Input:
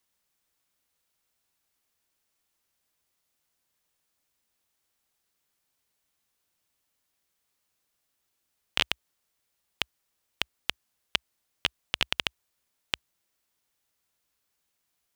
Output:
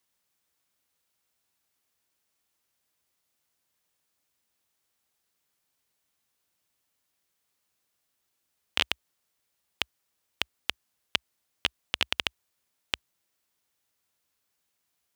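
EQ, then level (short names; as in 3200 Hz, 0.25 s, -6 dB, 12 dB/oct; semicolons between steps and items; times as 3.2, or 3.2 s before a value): HPF 56 Hz; 0.0 dB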